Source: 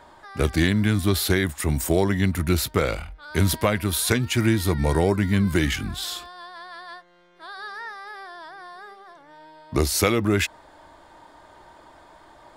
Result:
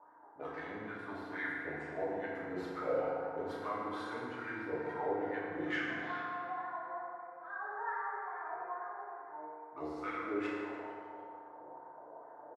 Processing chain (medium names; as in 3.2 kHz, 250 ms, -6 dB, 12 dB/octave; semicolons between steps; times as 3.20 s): high-pass 95 Hz; level-controlled noise filter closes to 560 Hz, open at -19 dBFS; treble shelf 6 kHz -8 dB; reverse; compression 6:1, threshold -33 dBFS, peak gain reduction 17 dB; reverse; wah-wah 2.3 Hz 490–1700 Hz, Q 4.6; on a send: frequency-shifting echo 149 ms, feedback 53%, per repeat +140 Hz, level -16 dB; on the sum: FDN reverb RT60 2.4 s, low-frequency decay 1.05×, high-frequency decay 0.5×, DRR -8 dB; trim +2 dB